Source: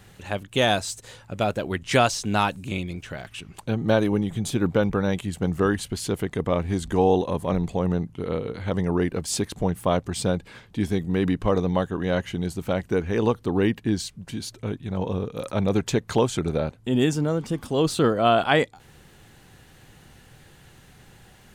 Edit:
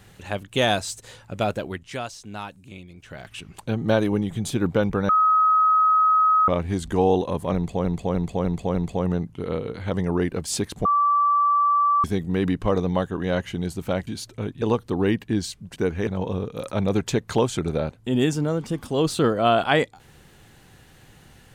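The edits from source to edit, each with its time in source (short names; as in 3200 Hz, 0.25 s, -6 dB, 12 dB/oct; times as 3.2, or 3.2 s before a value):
1.53–3.34 dip -12.5 dB, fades 0.39 s
5.09–6.48 bleep 1270 Hz -14.5 dBFS
7.55–7.85 loop, 5 plays
9.65–10.84 bleep 1160 Hz -16 dBFS
12.87–13.18 swap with 14.32–14.87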